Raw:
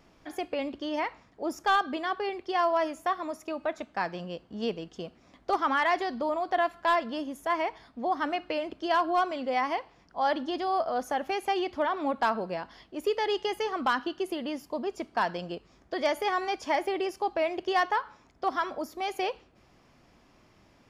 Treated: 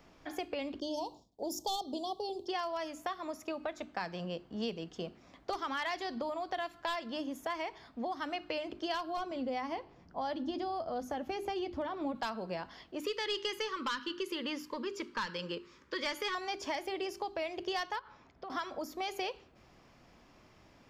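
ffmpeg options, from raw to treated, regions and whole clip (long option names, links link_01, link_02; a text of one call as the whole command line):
ffmpeg -i in.wav -filter_complex "[0:a]asettb=1/sr,asplit=3[link_01][link_02][link_03];[link_01]atrim=end=0.804[link_04];[link_02]atrim=start=0.8:end=2.48,asetpts=PTS-STARTPTS,afade=type=in:duration=0.004:curve=qsin,afade=type=out:start_time=1.676:duration=0.004:curve=qsin,aemphasis=mode=production:type=cd,agate=range=-33dB:threshold=-53dB:ratio=3:release=100:detection=peak,asuperstop=centerf=1800:order=8:qfactor=0.7[link_05];[link_03]atrim=start=2.476[link_06];[link_04][link_05]acrossfade=duration=0.004:curve1=hsin:curve2=qsin[link_07];[link_07][link_06]acrossfade=duration=0.004:curve1=qsin:curve2=hsin,asettb=1/sr,asplit=3[link_08][link_09][link_10];[link_08]atrim=end=9.174[link_11];[link_09]atrim=start=9.17:end=12.15,asetpts=PTS-STARTPTS,afade=type=in:duration=0.004:curve=qsin,afade=type=out:start_time=2.976:duration=0.004:curve=qsin,tiltshelf=frequency=690:gain=6.5,asplit=2[link_12][link_13];[link_13]adelay=12,volume=-13.5dB[link_14];[link_12][link_14]amix=inputs=2:normalize=0,atrim=end_sample=131418[link_15];[link_10]atrim=start=12.146[link_16];[link_11][link_15]acrossfade=duration=0.004:curve1=hsin:curve2=qsin[link_17];[link_17][link_16]acrossfade=duration=0.004:curve1=qsin:curve2=hsin,asettb=1/sr,asplit=3[link_18][link_19][link_20];[link_18]atrim=end=13.004[link_21];[link_19]atrim=start=13:end=16.35,asetpts=PTS-STARTPTS,afade=type=in:duration=0.004:curve=qsin,afade=type=out:start_time=3.346:duration=0.004:curve=qsin,asplit=2[link_22][link_23];[link_23]highpass=frequency=720:poles=1,volume=9dB,asoftclip=type=tanh:threshold=-16.5dB[link_24];[link_22][link_24]amix=inputs=2:normalize=0,lowpass=frequency=5600:poles=1,volume=-6dB,asuperstop=centerf=710:order=4:qfactor=1.9[link_25];[link_20]atrim=start=16.346[link_26];[link_21][link_25]acrossfade=duration=0.004:curve1=hsin:curve2=qsin[link_27];[link_27][link_26]acrossfade=duration=0.004:curve1=qsin:curve2=hsin,asettb=1/sr,asplit=3[link_28][link_29][link_30];[link_28]atrim=end=17.994[link_31];[link_29]atrim=start=17.99:end=18.5,asetpts=PTS-STARTPTS,afade=type=in:duration=0.004:curve=qsin,afade=type=out:start_time=0.506:duration=0.004:curve=qsin,lowpass=4700,acompressor=threshold=-40dB:ratio=16:attack=3.2:release=140:knee=1:detection=peak[link_32];[link_30]atrim=start=18.496[link_33];[link_31][link_32]acrossfade=duration=0.004:curve1=hsin:curve2=qsin[link_34];[link_34][link_33]acrossfade=duration=0.004:curve1=qsin:curve2=hsin,equalizer=frequency=9700:width_type=o:width=0.31:gain=-7.5,bandreject=frequency=50:width_type=h:width=6,bandreject=frequency=100:width_type=h:width=6,bandreject=frequency=150:width_type=h:width=6,bandreject=frequency=200:width_type=h:width=6,bandreject=frequency=250:width_type=h:width=6,bandreject=frequency=300:width_type=h:width=6,bandreject=frequency=350:width_type=h:width=6,bandreject=frequency=400:width_type=h:width=6,acrossover=split=160|3000[link_35][link_36][link_37];[link_36]acompressor=threshold=-35dB:ratio=6[link_38];[link_35][link_38][link_37]amix=inputs=3:normalize=0" out.wav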